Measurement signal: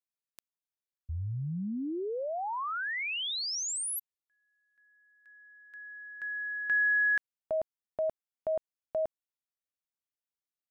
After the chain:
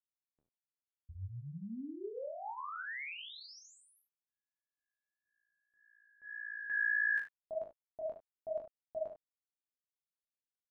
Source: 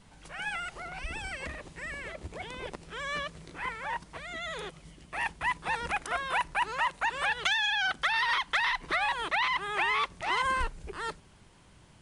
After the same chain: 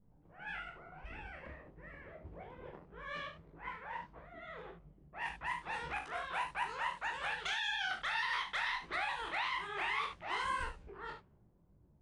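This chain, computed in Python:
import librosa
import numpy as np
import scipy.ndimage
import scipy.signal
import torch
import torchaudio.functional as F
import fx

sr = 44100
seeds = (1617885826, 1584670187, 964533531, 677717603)

y = fx.env_lowpass(x, sr, base_hz=410.0, full_db=-26.0)
y = fx.room_early_taps(y, sr, ms=(41, 75), db=(-6.5, -10.5))
y = fx.detune_double(y, sr, cents=58)
y = y * 10.0 ** (-6.0 / 20.0)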